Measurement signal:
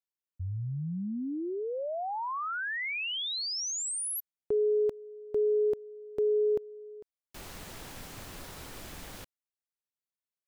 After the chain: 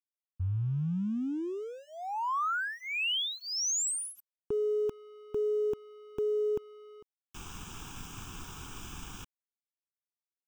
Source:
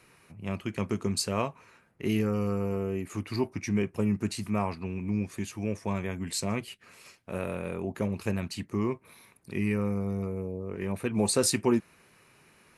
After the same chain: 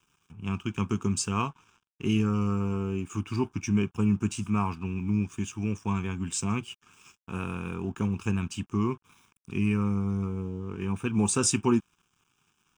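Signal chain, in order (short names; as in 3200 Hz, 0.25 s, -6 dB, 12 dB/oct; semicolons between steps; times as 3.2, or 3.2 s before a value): crossover distortion -57 dBFS; fixed phaser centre 2900 Hz, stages 8; gain +4.5 dB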